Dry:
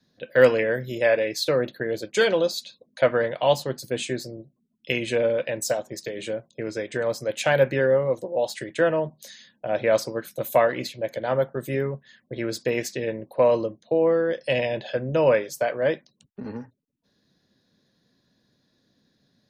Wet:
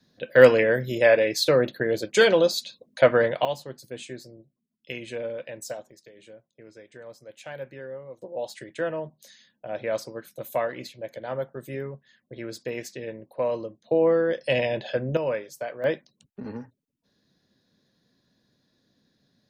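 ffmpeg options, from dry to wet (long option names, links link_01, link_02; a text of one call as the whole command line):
ffmpeg -i in.wav -af "asetnsamples=nb_out_samples=441:pad=0,asendcmd='3.45 volume volume -10dB;5.91 volume volume -18dB;8.22 volume volume -7.5dB;13.84 volume volume 0dB;15.17 volume volume -8.5dB;15.84 volume volume -1.5dB',volume=2.5dB" out.wav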